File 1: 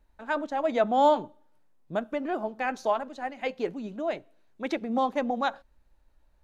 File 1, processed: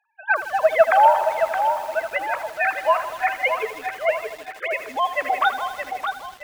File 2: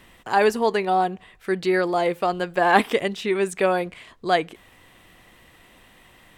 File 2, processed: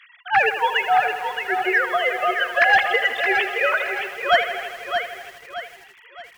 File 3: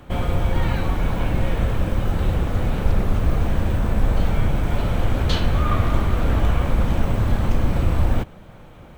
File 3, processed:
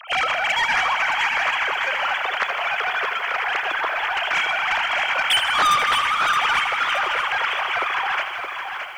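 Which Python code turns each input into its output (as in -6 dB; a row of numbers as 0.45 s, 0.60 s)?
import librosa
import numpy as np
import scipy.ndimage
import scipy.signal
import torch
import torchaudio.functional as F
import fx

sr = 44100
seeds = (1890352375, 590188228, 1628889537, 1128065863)

p1 = fx.sine_speech(x, sr)
p2 = scipy.signal.sosfilt(scipy.signal.butter(2, 1400.0, 'highpass', fs=sr, output='sos'), p1)
p3 = fx.dereverb_blind(p2, sr, rt60_s=0.68)
p4 = 10.0 ** (-19.0 / 20.0) * np.tanh(p3 / 10.0 ** (-19.0 / 20.0))
p5 = p4 + fx.echo_feedback(p4, sr, ms=620, feedback_pct=39, wet_db=-7.0, dry=0)
p6 = fx.echo_crushed(p5, sr, ms=80, feedback_pct=80, bits=9, wet_db=-11.0)
y = p6 * 10.0 ** (-22 / 20.0) / np.sqrt(np.mean(np.square(p6)))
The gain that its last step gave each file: +18.0 dB, +13.5 dB, +4.0 dB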